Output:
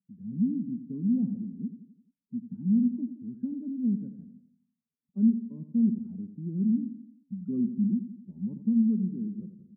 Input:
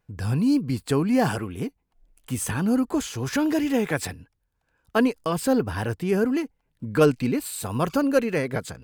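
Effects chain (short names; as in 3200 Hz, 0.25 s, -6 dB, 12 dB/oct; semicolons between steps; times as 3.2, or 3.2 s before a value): speed glide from 102% -> 79%; loudest bins only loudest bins 16; Butterworth band-pass 210 Hz, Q 3.3; on a send: feedback echo 86 ms, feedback 51%, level -11 dB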